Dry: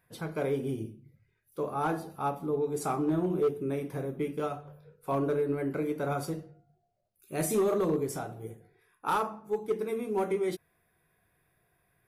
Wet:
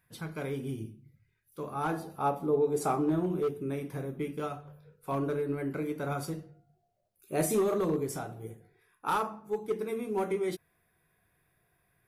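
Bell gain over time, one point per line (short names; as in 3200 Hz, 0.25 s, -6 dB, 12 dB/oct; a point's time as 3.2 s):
bell 540 Hz 1.6 oct
1.6 s -8 dB
2.3 s +4 dB
2.86 s +4 dB
3.36 s -4 dB
6.41 s -4 dB
7.34 s +5.5 dB
7.65 s -2 dB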